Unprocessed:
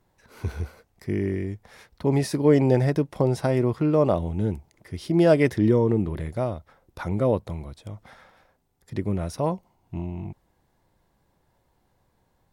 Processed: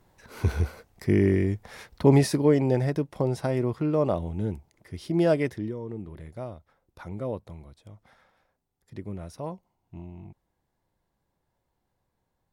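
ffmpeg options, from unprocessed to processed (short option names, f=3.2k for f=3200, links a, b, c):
-af "volume=11.5dB,afade=t=out:st=2.06:d=0.49:silence=0.354813,afade=t=out:st=5.26:d=0.49:silence=0.237137,afade=t=in:st=5.75:d=0.68:silence=0.473151"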